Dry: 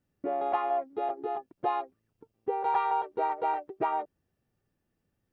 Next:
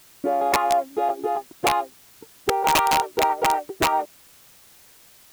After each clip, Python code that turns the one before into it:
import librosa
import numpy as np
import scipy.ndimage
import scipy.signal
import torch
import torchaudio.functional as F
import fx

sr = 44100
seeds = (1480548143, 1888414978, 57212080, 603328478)

y = fx.quant_dither(x, sr, seeds[0], bits=10, dither='triangular')
y = (np.mod(10.0 ** (20.5 / 20.0) * y + 1.0, 2.0) - 1.0) / 10.0 ** (20.5 / 20.0)
y = y * librosa.db_to_amplitude(8.5)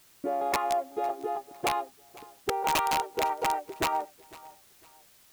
y = fx.echo_feedback(x, sr, ms=504, feedback_pct=32, wet_db=-21.0)
y = y * librosa.db_to_amplitude(-7.5)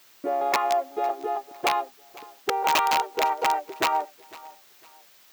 y = fx.highpass(x, sr, hz=490.0, slope=6)
y = fx.peak_eq(y, sr, hz=10000.0, db=-9.5, octaves=0.72)
y = y * librosa.db_to_amplitude(6.0)